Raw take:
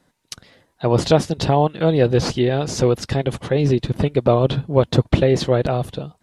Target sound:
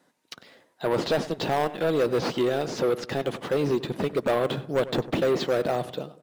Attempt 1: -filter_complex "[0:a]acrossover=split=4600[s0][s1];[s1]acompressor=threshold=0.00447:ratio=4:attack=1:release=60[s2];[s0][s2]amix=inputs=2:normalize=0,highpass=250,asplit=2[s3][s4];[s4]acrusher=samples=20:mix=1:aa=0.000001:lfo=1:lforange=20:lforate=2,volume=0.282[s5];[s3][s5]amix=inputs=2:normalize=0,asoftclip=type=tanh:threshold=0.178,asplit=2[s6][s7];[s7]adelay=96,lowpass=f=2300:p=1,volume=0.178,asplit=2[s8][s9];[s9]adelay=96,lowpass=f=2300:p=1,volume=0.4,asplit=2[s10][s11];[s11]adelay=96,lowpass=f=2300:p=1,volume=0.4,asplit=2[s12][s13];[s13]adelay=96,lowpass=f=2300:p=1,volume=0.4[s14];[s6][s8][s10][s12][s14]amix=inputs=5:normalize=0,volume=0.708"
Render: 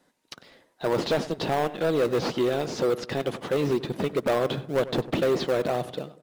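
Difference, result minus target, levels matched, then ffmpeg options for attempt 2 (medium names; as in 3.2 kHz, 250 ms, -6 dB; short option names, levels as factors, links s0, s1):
decimation with a swept rate: distortion +10 dB
-filter_complex "[0:a]acrossover=split=4600[s0][s1];[s1]acompressor=threshold=0.00447:ratio=4:attack=1:release=60[s2];[s0][s2]amix=inputs=2:normalize=0,highpass=250,asplit=2[s3][s4];[s4]acrusher=samples=7:mix=1:aa=0.000001:lfo=1:lforange=7:lforate=2,volume=0.282[s5];[s3][s5]amix=inputs=2:normalize=0,asoftclip=type=tanh:threshold=0.178,asplit=2[s6][s7];[s7]adelay=96,lowpass=f=2300:p=1,volume=0.178,asplit=2[s8][s9];[s9]adelay=96,lowpass=f=2300:p=1,volume=0.4,asplit=2[s10][s11];[s11]adelay=96,lowpass=f=2300:p=1,volume=0.4,asplit=2[s12][s13];[s13]adelay=96,lowpass=f=2300:p=1,volume=0.4[s14];[s6][s8][s10][s12][s14]amix=inputs=5:normalize=0,volume=0.708"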